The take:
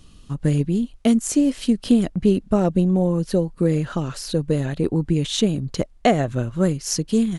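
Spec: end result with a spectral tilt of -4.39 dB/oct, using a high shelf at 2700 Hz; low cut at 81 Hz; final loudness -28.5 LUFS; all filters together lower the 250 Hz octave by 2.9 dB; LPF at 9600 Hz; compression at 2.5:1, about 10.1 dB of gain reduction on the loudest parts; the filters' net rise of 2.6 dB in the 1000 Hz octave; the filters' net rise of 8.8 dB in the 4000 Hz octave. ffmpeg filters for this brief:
-af "highpass=81,lowpass=9.6k,equalizer=f=250:t=o:g=-4,equalizer=f=1k:t=o:g=4,highshelf=f=2.7k:g=4,equalizer=f=4k:t=o:g=7.5,acompressor=threshold=-26dB:ratio=2.5,volume=-1dB"

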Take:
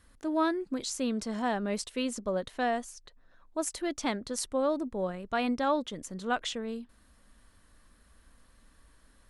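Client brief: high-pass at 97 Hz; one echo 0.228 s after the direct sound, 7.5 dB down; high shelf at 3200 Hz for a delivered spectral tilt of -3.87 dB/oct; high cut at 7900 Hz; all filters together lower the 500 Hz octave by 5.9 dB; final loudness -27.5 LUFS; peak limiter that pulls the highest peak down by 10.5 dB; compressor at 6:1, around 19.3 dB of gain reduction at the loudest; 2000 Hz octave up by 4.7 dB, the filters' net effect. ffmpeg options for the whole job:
-af "highpass=97,lowpass=7.9k,equalizer=f=500:t=o:g=-8,equalizer=f=2k:t=o:g=8.5,highshelf=f=3.2k:g=-6,acompressor=threshold=-46dB:ratio=6,alimiter=level_in=17.5dB:limit=-24dB:level=0:latency=1,volume=-17.5dB,aecho=1:1:228:0.422,volume=23dB"

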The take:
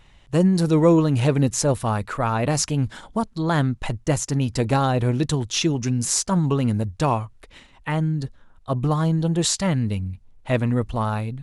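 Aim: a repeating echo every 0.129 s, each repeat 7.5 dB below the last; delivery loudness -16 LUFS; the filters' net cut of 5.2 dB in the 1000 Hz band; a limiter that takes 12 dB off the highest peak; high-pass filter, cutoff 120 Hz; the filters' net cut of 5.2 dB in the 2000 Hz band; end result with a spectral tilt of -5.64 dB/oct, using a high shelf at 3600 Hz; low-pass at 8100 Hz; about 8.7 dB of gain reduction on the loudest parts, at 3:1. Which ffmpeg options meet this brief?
-af "highpass=120,lowpass=8.1k,equalizer=f=1k:t=o:g=-5.5,equalizer=f=2k:t=o:g=-3.5,highshelf=f=3.6k:g=-5,acompressor=threshold=-26dB:ratio=3,alimiter=level_in=1.5dB:limit=-24dB:level=0:latency=1,volume=-1.5dB,aecho=1:1:129|258|387|516|645:0.422|0.177|0.0744|0.0312|0.0131,volume=17.5dB"

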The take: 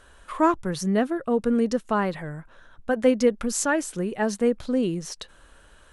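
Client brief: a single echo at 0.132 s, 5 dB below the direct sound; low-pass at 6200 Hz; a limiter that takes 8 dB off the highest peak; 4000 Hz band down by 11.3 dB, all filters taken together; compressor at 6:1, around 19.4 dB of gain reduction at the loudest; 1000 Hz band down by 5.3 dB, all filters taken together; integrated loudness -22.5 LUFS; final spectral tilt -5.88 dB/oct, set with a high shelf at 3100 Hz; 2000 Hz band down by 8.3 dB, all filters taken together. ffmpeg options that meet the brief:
-af "lowpass=6.2k,equalizer=f=1k:t=o:g=-4,equalizer=f=2k:t=o:g=-6,highshelf=f=3.1k:g=-7,equalizer=f=4k:t=o:g=-6.5,acompressor=threshold=-37dB:ratio=6,alimiter=level_in=9dB:limit=-24dB:level=0:latency=1,volume=-9dB,aecho=1:1:132:0.562,volume=19.5dB"

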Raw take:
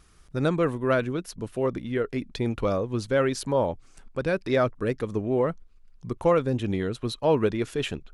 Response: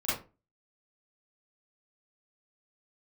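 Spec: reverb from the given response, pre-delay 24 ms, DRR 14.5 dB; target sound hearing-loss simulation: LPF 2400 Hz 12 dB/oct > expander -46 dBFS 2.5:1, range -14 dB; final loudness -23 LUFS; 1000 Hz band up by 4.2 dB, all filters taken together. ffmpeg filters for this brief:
-filter_complex "[0:a]equalizer=f=1k:t=o:g=5.5,asplit=2[a][b];[1:a]atrim=start_sample=2205,adelay=24[c];[b][c]afir=irnorm=-1:irlink=0,volume=-22.5dB[d];[a][d]amix=inputs=2:normalize=0,lowpass=2.4k,agate=range=-14dB:threshold=-46dB:ratio=2.5,volume=2.5dB"

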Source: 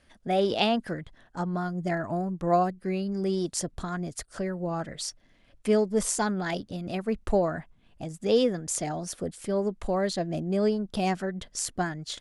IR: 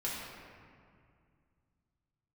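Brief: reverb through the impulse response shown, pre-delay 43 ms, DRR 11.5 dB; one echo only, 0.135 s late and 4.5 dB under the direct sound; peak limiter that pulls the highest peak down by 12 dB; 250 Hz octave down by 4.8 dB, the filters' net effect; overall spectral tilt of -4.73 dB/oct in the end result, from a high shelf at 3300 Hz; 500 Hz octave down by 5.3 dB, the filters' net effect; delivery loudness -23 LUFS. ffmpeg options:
-filter_complex "[0:a]equalizer=f=250:t=o:g=-6,equalizer=f=500:t=o:g=-5,highshelf=f=3.3k:g=-3.5,alimiter=level_in=0.5dB:limit=-24dB:level=0:latency=1,volume=-0.5dB,aecho=1:1:135:0.596,asplit=2[a][b];[1:a]atrim=start_sample=2205,adelay=43[c];[b][c]afir=irnorm=-1:irlink=0,volume=-15.5dB[d];[a][d]amix=inputs=2:normalize=0,volume=11dB"

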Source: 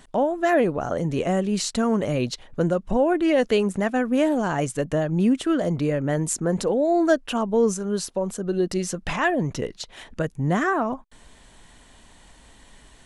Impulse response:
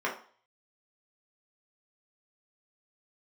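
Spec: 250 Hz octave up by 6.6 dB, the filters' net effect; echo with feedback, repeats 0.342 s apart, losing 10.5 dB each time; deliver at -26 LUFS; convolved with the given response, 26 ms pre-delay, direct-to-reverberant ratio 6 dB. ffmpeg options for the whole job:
-filter_complex "[0:a]equalizer=f=250:t=o:g=8.5,aecho=1:1:342|684|1026:0.299|0.0896|0.0269,asplit=2[a][b];[1:a]atrim=start_sample=2205,adelay=26[c];[b][c]afir=irnorm=-1:irlink=0,volume=-15.5dB[d];[a][d]amix=inputs=2:normalize=0,volume=-8dB"

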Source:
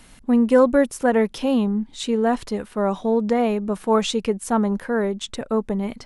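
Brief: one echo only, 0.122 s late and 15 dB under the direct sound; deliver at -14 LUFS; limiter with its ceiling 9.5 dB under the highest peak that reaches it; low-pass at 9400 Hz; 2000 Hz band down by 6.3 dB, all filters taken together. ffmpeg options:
-af "lowpass=9.4k,equalizer=f=2k:t=o:g=-8.5,alimiter=limit=-14.5dB:level=0:latency=1,aecho=1:1:122:0.178,volume=10.5dB"

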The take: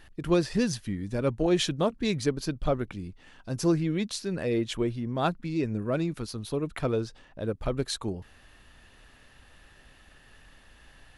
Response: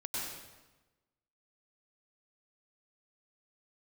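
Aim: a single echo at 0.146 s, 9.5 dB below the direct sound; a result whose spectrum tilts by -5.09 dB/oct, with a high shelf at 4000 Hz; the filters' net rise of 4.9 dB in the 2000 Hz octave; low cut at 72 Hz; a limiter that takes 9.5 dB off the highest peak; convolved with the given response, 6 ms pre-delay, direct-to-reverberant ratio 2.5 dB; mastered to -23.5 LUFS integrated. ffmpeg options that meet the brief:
-filter_complex "[0:a]highpass=72,equalizer=f=2k:t=o:g=5,highshelf=f=4k:g=5.5,alimiter=limit=-21dB:level=0:latency=1,aecho=1:1:146:0.335,asplit=2[a][b];[1:a]atrim=start_sample=2205,adelay=6[c];[b][c]afir=irnorm=-1:irlink=0,volume=-5.5dB[d];[a][d]amix=inputs=2:normalize=0,volume=5.5dB"

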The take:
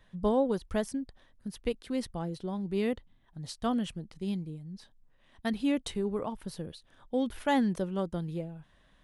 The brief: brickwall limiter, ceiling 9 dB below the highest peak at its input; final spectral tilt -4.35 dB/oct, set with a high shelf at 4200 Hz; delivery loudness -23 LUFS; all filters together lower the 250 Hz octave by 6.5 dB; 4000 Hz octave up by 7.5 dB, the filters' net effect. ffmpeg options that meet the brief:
-af "equalizer=f=250:t=o:g=-8,equalizer=f=4k:t=o:g=6,highshelf=f=4.2k:g=6.5,volume=15.5dB,alimiter=limit=-10.5dB:level=0:latency=1"

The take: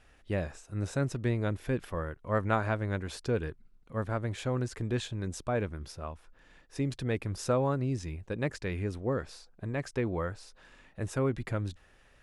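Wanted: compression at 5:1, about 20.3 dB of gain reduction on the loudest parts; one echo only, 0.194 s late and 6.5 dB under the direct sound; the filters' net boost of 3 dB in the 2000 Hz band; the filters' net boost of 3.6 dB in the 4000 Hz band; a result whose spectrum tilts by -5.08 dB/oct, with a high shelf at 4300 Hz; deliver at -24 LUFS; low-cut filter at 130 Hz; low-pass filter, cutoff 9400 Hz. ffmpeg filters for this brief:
-af "highpass=130,lowpass=9.4k,equalizer=f=2k:t=o:g=3.5,equalizer=f=4k:t=o:g=5.5,highshelf=f=4.3k:g=-3.5,acompressor=threshold=-46dB:ratio=5,aecho=1:1:194:0.473,volume=25dB"

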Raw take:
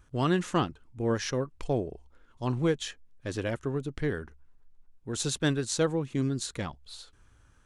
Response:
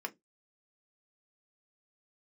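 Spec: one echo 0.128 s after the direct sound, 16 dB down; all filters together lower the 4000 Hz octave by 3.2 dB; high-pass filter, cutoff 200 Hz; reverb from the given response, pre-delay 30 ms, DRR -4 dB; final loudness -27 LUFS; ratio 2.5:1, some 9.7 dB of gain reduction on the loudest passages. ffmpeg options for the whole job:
-filter_complex "[0:a]highpass=200,equalizer=f=4k:t=o:g=-4,acompressor=threshold=-37dB:ratio=2.5,aecho=1:1:128:0.158,asplit=2[a][b];[1:a]atrim=start_sample=2205,adelay=30[c];[b][c]afir=irnorm=-1:irlink=0,volume=2.5dB[d];[a][d]amix=inputs=2:normalize=0,volume=8.5dB"

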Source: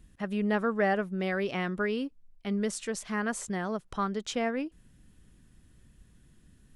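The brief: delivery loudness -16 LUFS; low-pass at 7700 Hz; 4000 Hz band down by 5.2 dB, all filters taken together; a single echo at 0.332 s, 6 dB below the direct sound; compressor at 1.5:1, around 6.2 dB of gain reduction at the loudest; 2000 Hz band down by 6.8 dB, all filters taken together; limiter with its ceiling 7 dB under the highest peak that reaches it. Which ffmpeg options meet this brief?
-af "lowpass=7.7k,equalizer=f=2k:t=o:g=-8,equalizer=f=4k:t=o:g=-3.5,acompressor=threshold=-41dB:ratio=1.5,alimiter=level_in=6dB:limit=-24dB:level=0:latency=1,volume=-6dB,aecho=1:1:332:0.501,volume=23dB"

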